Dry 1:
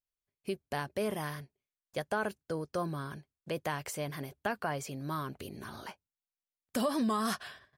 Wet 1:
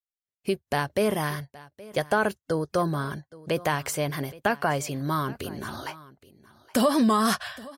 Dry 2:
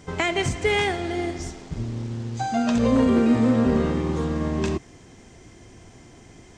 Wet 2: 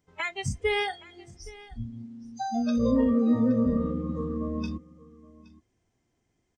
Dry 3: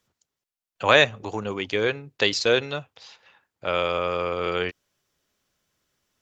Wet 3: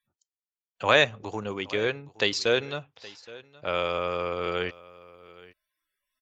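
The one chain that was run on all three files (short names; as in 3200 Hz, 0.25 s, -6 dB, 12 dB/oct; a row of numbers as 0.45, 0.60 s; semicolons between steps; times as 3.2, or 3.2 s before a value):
spectral noise reduction 24 dB; echo 0.82 s -20.5 dB; match loudness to -27 LUFS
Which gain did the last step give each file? +9.5, -3.5, -3.5 dB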